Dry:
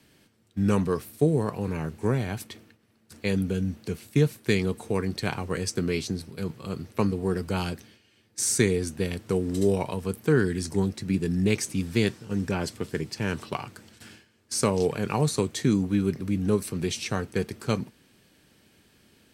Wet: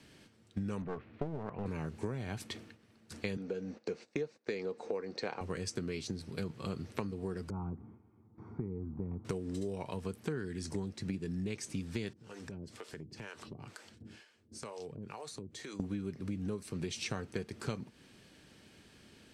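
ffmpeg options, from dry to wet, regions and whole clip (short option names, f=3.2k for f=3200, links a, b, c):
-filter_complex "[0:a]asettb=1/sr,asplit=3[a][b][c];[a]atrim=end=0.824[d];[b]atrim=start=0.82:end=1.66,asetpts=PTS-STARTPTS,afade=t=in:d=0.004:c=qsin,afade=t=out:st=0.836:d=0.004:c=qsin,lowpass=f=2.5k:w=0.5412,lowpass=f=2.5k:w=1.3066,aeval=exprs='clip(val(0),-1,0.0282)':c=same[e];[c]atrim=start=1.656[f];[d][e]acrossfade=d=0.004:c1=hsin:c2=qsin[g];[g][f]acrossfade=d=0.004:c1=qsin:c2=hsin,asettb=1/sr,asplit=3[h][i][j];[h]atrim=end=3.374[k];[i]atrim=start=3.37:end=5.41,asetpts=PTS-STARTPTS,afade=t=in:d=0.004:c=qsin,afade=t=out:st=2.036:d=0.004:c=qsin,highpass=280,equalizer=f=500:t=q:w=4:g=10,equalizer=f=790:t=q:w=4:g=4,equalizer=f=3.2k:t=q:w=4:g=-8,lowpass=f=6.2k:w=0.5412,lowpass=f=6.2k:w=1.3066,agate=range=-16dB:threshold=-51dB:ratio=16:release=100:detection=peak[l];[j]atrim=start=5.406[m];[k][l]acrossfade=d=0.004:c1=hsin:c2=qsin[n];[n][m]acrossfade=d=0.004:c1=qsin:c2=hsin,asettb=1/sr,asplit=3[o][p][q];[o]atrim=end=7.504[r];[p]atrim=start=7.5:end=9.25,asetpts=PTS-STARTPTS,afade=t=in:d=0.004:c=qsin,afade=t=out:st=1.746:d=0.004:c=qsin,lowpass=f=1k:w=0.5412,lowpass=f=1k:w=1.3066,aecho=1:1:0.9:0.71,atrim=end_sample=77175,acompressor=threshold=-50dB:ratio=1.5:attack=3.2:release=140:knee=1:detection=peak[s];[q]atrim=start=9.246[t];[r][s]acrossfade=d=0.004:c1=hsin:c2=qsin[u];[u][t]acrossfade=d=0.004:c1=qsin:c2=hsin,asettb=1/sr,asplit=3[v][w][x];[v]atrim=end=12.134[y];[w]atrim=start=12.13:end=15.8,asetpts=PTS-STARTPTS,afade=t=in:d=0.004:c=qsin,afade=t=out:st=3.666:d=0.004:c=qsin,acrossover=split=430[z][aa];[z]aeval=exprs='val(0)*(1-1/2+1/2*cos(2*PI*2.1*n/s))':c=same[ab];[aa]aeval=exprs='val(0)*(1-1/2-1/2*cos(2*PI*2.1*n/s))':c=same[ac];[ab][ac]amix=inputs=2:normalize=0,acompressor=threshold=-44dB:ratio=5:attack=3.2:release=140:knee=1:detection=peak[ad];[x]atrim=start=15.796[ae];[y][ad]acrossfade=d=0.004:c1=hsin:c2=qsin[af];[af][ae]acrossfade=d=0.004:c1=qsin:c2=hsin,lowpass=8.4k,acompressor=threshold=-35dB:ratio=12,volume=1dB"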